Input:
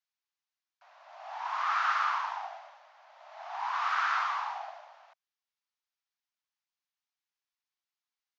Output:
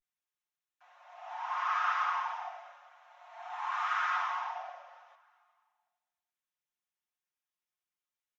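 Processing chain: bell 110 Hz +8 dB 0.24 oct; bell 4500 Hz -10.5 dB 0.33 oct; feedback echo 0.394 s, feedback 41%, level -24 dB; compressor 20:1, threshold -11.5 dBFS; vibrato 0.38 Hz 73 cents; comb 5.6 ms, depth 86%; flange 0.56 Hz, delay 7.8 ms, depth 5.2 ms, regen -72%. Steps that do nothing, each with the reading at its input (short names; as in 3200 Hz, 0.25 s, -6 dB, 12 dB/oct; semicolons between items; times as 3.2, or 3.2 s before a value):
bell 110 Hz: input band starts at 570 Hz; compressor, threshold -11.5 dBFS: input peak -17.0 dBFS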